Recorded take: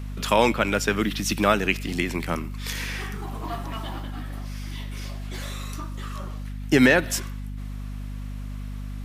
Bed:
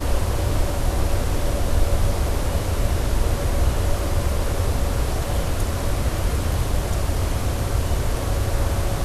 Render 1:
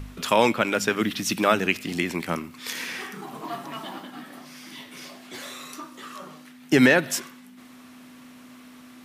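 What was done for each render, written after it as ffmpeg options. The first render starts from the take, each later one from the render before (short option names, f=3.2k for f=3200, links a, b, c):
-af "bandreject=f=50:t=h:w=4,bandreject=f=100:t=h:w=4,bandreject=f=150:t=h:w=4,bandreject=f=200:t=h:w=4"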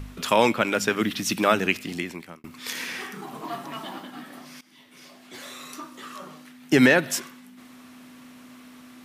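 -filter_complex "[0:a]asplit=3[a][b][c];[a]atrim=end=2.44,asetpts=PTS-STARTPTS,afade=t=out:st=1.72:d=0.72[d];[b]atrim=start=2.44:end=4.61,asetpts=PTS-STARTPTS,afade=t=in:d=0.004:c=hsin,afade=t=out:st=2.166:d=0.004:c=hsin:silence=0.112202[e];[c]atrim=start=4.61,asetpts=PTS-STARTPTS,afade=t=in:d=1.16:silence=0.112202[f];[d][e][f]concat=n=3:v=0:a=1"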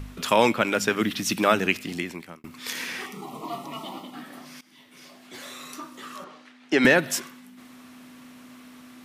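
-filter_complex "[0:a]asettb=1/sr,asplit=3[a][b][c];[a]atrim=end=3.064[d];[b]atrim=start=3.06:end=4.14,asetpts=PTS-STARTPTS,afade=t=in:d=0.004:c=qsin,afade=t=out:st=1.076:d=0.004:c=qsin,asuperstop=centerf=1600:order=4:qfactor=2.4[e];[c]atrim=start=4.136[f];[d][e]acrossfade=d=0.004:c1=hsin:c2=qsin[g];[g][f]acrossfade=d=0.004:c1=qsin:c2=hsin,asettb=1/sr,asplit=3[h][i][j];[h]atrim=end=6.244[k];[i]atrim=start=6.24:end=6.85,asetpts=PTS-STARTPTS,afade=t=in:d=0.004:c=qsin,afade=t=out:st=0.606:d=0.004:c=qsin,highpass=330,lowpass=4.9k[l];[j]atrim=start=6.846[m];[k][l]acrossfade=d=0.004:c1=hsin:c2=qsin[n];[n][m]acrossfade=d=0.004:c1=qsin:c2=hsin"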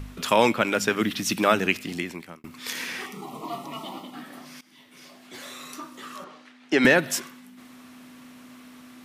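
-af anull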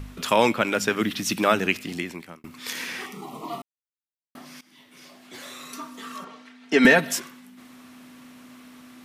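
-filter_complex "[0:a]asettb=1/sr,asplit=3[a][b][c];[a]atrim=end=5.724[d];[b]atrim=start=5.72:end=7.13,asetpts=PTS-STARTPTS,afade=t=in:d=0.004:c=qsin,afade=t=out:st=1.406:d=0.004:c=qsin,aecho=1:1:4.4:0.71,atrim=end_sample=62181[e];[c]atrim=start=7.126[f];[d][e]acrossfade=d=0.004:c1=hsin:c2=qsin[g];[g][f]acrossfade=d=0.004:c1=qsin:c2=hsin,asplit=3[h][i][j];[h]atrim=end=3.62,asetpts=PTS-STARTPTS,afade=t=out:st=3.616:d=0.004:c=hsin[k];[i]atrim=start=3.62:end=4.35,asetpts=PTS-STARTPTS,volume=0[l];[j]atrim=start=4.35,asetpts=PTS-STARTPTS,afade=t=in:d=0.004:c=hsin[m];[k][l][m]concat=n=3:v=0:a=1"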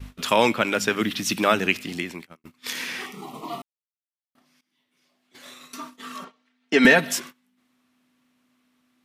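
-af "agate=range=-21dB:threshold=-39dB:ratio=16:detection=peak,equalizer=f=3.3k:t=o:w=1.4:g=2.5"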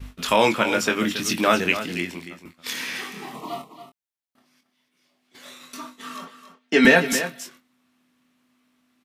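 -filter_complex "[0:a]asplit=2[a][b];[b]adelay=23,volume=-6.5dB[c];[a][c]amix=inputs=2:normalize=0,asplit=2[d][e];[e]aecho=0:1:277:0.266[f];[d][f]amix=inputs=2:normalize=0"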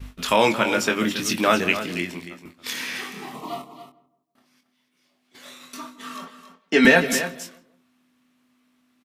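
-filter_complex "[0:a]asplit=2[a][b];[b]adelay=164,lowpass=f=1k:p=1,volume=-15dB,asplit=2[c][d];[d]adelay=164,lowpass=f=1k:p=1,volume=0.37,asplit=2[e][f];[f]adelay=164,lowpass=f=1k:p=1,volume=0.37[g];[a][c][e][g]amix=inputs=4:normalize=0"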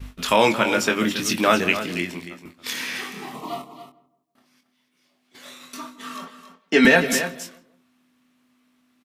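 -af "volume=1dB,alimiter=limit=-3dB:level=0:latency=1"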